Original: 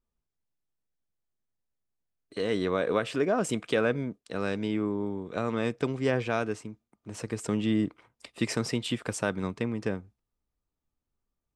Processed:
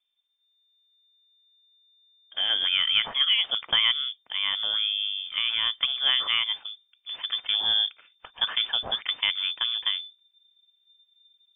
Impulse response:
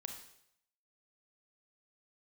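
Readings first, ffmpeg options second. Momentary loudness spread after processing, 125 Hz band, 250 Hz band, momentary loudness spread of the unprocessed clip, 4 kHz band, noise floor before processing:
9 LU, under -20 dB, under -25 dB, 10 LU, +21.5 dB, under -85 dBFS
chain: -af "asubboost=boost=8.5:cutoff=60,lowpass=f=3.1k:t=q:w=0.5098,lowpass=f=3.1k:t=q:w=0.6013,lowpass=f=3.1k:t=q:w=0.9,lowpass=f=3.1k:t=q:w=2.563,afreqshift=-3600,volume=4dB"

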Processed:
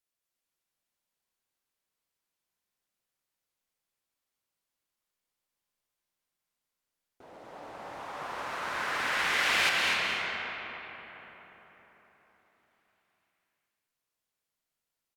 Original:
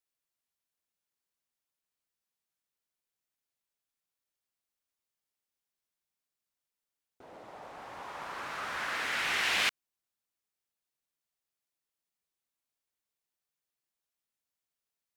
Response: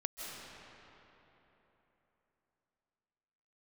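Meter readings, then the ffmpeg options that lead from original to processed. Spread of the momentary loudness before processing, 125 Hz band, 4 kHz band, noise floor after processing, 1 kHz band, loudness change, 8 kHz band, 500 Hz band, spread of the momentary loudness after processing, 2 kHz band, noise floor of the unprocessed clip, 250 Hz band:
20 LU, +5.0 dB, +3.5 dB, under -85 dBFS, +5.0 dB, +2.5 dB, +2.5 dB, +5.5 dB, 21 LU, +4.5 dB, under -85 dBFS, +5.0 dB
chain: -filter_complex "[0:a]aecho=1:1:246:0.355[a];[1:a]atrim=start_sample=2205,asetrate=36162,aresample=44100[b];[a][b]afir=irnorm=-1:irlink=0,volume=1.5dB"

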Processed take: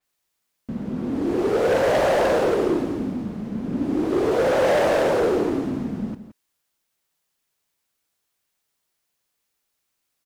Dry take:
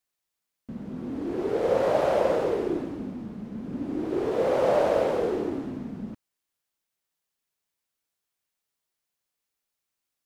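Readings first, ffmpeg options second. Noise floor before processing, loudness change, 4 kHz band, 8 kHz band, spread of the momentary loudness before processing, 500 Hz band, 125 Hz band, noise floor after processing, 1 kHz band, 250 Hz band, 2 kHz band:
-85 dBFS, +5.0 dB, +9.0 dB, n/a, 15 LU, +4.5 dB, +7.0 dB, -77 dBFS, +5.0 dB, +7.0 dB, +10.0 dB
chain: -af "asoftclip=type=hard:threshold=-24dB,aecho=1:1:170:0.237,adynamicequalizer=threshold=0.00251:dfrequency=4700:dqfactor=0.7:tfrequency=4700:tqfactor=0.7:attack=5:release=100:ratio=0.375:range=2:mode=boostabove:tftype=highshelf,volume=7.5dB"

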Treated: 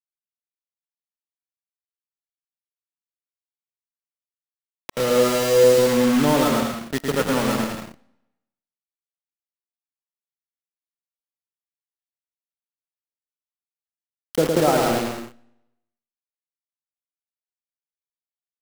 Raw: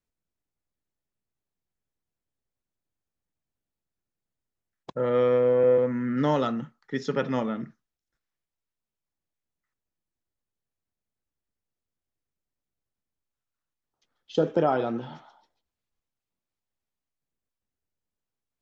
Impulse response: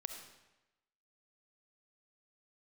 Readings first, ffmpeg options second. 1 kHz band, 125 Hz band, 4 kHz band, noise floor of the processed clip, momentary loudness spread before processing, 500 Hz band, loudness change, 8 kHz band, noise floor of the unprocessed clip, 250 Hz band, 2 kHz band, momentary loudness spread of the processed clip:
+6.5 dB, +5.0 dB, +15.0 dB, under -85 dBFS, 15 LU, +5.0 dB, +6.0 dB, n/a, under -85 dBFS, +7.0 dB, +10.5 dB, 13 LU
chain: -filter_complex "[0:a]acrusher=bits=4:mix=0:aa=0.000001,aecho=1:1:110|187|240.9|278.6|305:0.631|0.398|0.251|0.158|0.1,asplit=2[a][b];[1:a]atrim=start_sample=2205[c];[b][c]afir=irnorm=-1:irlink=0,volume=-15.5dB[d];[a][d]amix=inputs=2:normalize=0,volume=2.5dB"

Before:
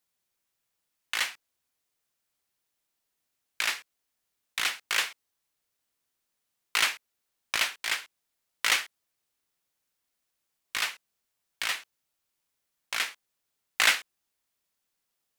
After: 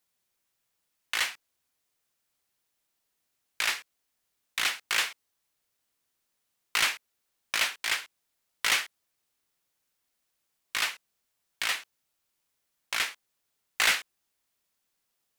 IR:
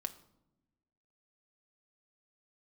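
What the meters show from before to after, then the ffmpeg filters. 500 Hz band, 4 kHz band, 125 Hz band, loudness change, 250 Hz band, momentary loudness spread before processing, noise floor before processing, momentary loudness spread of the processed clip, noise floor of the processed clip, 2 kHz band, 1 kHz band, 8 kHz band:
0.0 dB, 0.0 dB, n/a, 0.0 dB, +0.5 dB, 12 LU, -82 dBFS, 9 LU, -80 dBFS, 0.0 dB, 0.0 dB, 0.0 dB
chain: -af "asoftclip=type=tanh:threshold=-18.5dB,volume=2dB"

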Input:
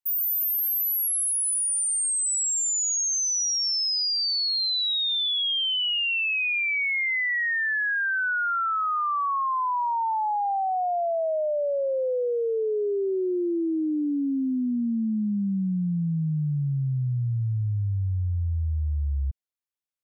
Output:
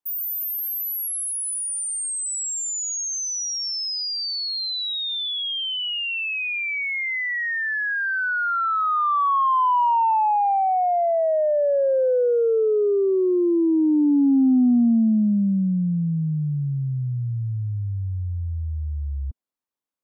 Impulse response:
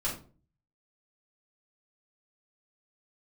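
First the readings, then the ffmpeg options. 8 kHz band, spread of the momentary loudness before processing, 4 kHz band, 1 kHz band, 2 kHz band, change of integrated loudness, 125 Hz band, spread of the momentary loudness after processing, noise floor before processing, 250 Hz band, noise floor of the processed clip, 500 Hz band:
-2.0 dB, 5 LU, -1.5 dB, +5.5 dB, +0.5 dB, +2.5 dB, +1.0 dB, 9 LU, -26 dBFS, +7.5 dB, -28 dBFS, +6.0 dB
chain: -af "equalizer=f=250:t=o:w=1:g=11,equalizer=f=500:t=o:w=1:g=5,equalizer=f=1k:t=o:w=1:g=8,acontrast=36,volume=-7.5dB"

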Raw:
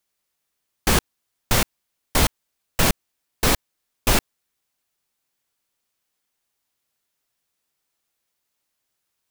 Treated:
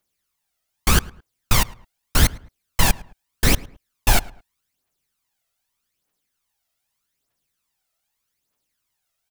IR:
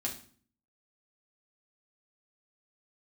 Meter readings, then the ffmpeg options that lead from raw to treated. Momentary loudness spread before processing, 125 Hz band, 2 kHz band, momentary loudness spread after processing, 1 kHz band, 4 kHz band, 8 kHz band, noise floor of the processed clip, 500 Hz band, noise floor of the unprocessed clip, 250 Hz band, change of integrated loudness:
6 LU, +3.5 dB, +1.0 dB, 7 LU, 0.0 dB, +0.5 dB, +0.5 dB, -78 dBFS, -3.5 dB, -78 dBFS, -0.5 dB, +1.0 dB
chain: -filter_complex "[0:a]aphaser=in_gain=1:out_gain=1:delay=1.6:decay=0.61:speed=0.82:type=triangular,asplit=2[a][b];[b]adelay=108,lowpass=f=2k:p=1,volume=-20.5dB,asplit=2[c][d];[d]adelay=108,lowpass=f=2k:p=1,volume=0.31[e];[c][e]amix=inputs=2:normalize=0[f];[a][f]amix=inputs=2:normalize=0,volume=-1.5dB"

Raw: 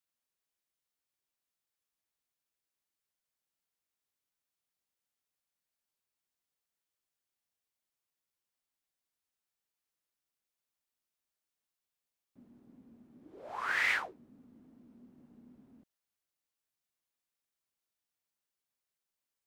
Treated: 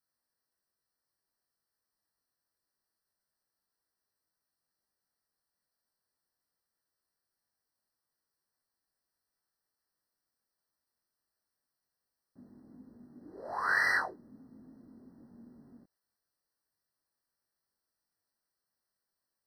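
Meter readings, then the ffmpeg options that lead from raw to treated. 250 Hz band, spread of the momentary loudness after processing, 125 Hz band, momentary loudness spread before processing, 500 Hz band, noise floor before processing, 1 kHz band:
+4.0 dB, 15 LU, +4.5 dB, 17 LU, +4.5 dB, under -85 dBFS, +4.5 dB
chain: -af "flanger=delay=19.5:depth=3.7:speed=0.24,afftfilt=real='re*eq(mod(floor(b*sr/1024/2000),2),0)':imag='im*eq(mod(floor(b*sr/1024/2000),2),0)':win_size=1024:overlap=0.75,volume=7.5dB"

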